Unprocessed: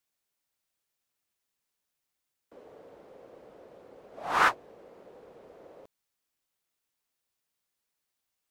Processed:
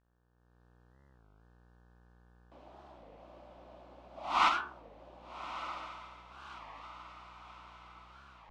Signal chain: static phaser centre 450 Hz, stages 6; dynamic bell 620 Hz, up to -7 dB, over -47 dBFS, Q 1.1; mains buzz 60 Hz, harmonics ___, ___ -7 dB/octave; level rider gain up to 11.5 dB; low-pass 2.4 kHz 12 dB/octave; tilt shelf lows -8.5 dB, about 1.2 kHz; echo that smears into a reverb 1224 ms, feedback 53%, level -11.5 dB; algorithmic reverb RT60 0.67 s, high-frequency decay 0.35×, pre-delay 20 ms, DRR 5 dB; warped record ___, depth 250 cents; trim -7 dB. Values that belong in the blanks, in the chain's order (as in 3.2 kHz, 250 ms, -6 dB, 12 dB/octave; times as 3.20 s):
30, -61 dBFS, 33 1/3 rpm